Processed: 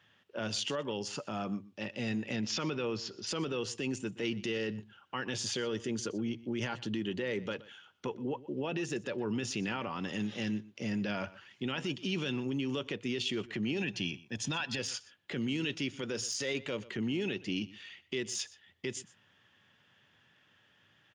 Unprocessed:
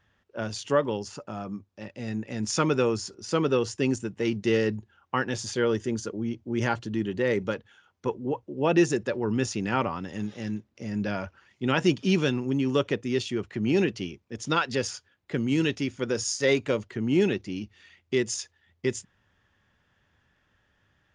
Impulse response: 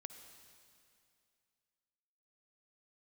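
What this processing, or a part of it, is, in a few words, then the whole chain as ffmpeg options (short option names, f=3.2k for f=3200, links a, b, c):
broadcast voice chain: -filter_complex "[0:a]asettb=1/sr,asplit=3[a][b][c];[a]atrim=end=2.364[d];[b]atrim=start=2.36:end=3.27,asetpts=PTS-STARTPTS,afade=t=in:d=0.004:c=qsin,afade=t=out:st=0.906:d=0.004:c=qsin,lowpass=f=5.2k:w=0.5412,lowpass=f=5.2k:w=1.3066[e];[c]atrim=start=3.266[f];[d][e]acrossfade=d=0.004:c1=hsin:c2=qsin[g];[g][f]acrossfade=d=0.004:c1=qsin:c2=hsin,asettb=1/sr,asplit=3[h][i][j];[h]atrim=end=13.804[k];[i]atrim=start=13.8:end=14.79,asetpts=PTS-STARTPTS,afade=t=in:d=0.004:c=qsin,afade=t=out:st=0.986:d=0.004:c=qsin,aecho=1:1:1.2:0.55,atrim=end_sample=43659[l];[j]atrim=start=14.786[m];[k][l]acrossfade=d=0.004:c1=hsin:c2=qsin[n];[n][m]acrossfade=d=0.004:c1=qsin:c2=hsin,highpass=f=110:w=0.5412,highpass=f=110:w=1.3066,deesser=0.65,acompressor=threshold=-31dB:ratio=3,equalizer=f=3k:t=o:w=0.45:g=4,alimiter=level_in=3dB:limit=-24dB:level=0:latency=1:release=15,volume=-3dB,equalizer=f=3.1k:t=o:w=1.3:g=5.5,asplit=2[o][p];[p]adelay=122.4,volume=-19dB,highshelf=f=4k:g=-2.76[q];[o][q]amix=inputs=2:normalize=0"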